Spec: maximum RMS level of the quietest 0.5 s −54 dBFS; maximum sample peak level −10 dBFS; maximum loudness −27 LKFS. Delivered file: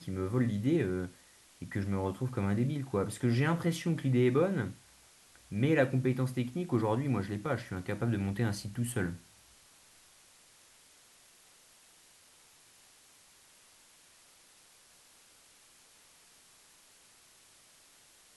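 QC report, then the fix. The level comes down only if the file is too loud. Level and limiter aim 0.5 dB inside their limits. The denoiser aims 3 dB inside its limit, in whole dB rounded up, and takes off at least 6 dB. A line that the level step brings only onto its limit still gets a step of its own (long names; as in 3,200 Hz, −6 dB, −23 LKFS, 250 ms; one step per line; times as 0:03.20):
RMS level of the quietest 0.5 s −61 dBFS: in spec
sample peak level −15.5 dBFS: in spec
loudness −32.0 LKFS: in spec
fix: no processing needed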